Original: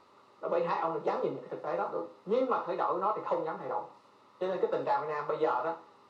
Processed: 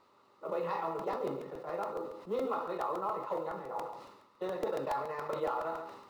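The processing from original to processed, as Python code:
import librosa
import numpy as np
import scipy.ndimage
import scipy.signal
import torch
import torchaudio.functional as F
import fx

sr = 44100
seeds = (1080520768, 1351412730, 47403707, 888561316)

p1 = x + 10.0 ** (-12.0 / 20.0) * np.pad(x, (int(139 * sr / 1000.0), 0))[:len(x)]
p2 = fx.level_steps(p1, sr, step_db=11)
p3 = p1 + F.gain(torch.from_numpy(p2), -2.5).numpy()
p4 = fx.quant_companded(p3, sr, bits=8)
p5 = fx.buffer_crackle(p4, sr, first_s=0.99, period_s=0.14, block=128, kind='repeat')
p6 = fx.sustainer(p5, sr, db_per_s=57.0)
y = F.gain(torch.from_numpy(p6), -8.5).numpy()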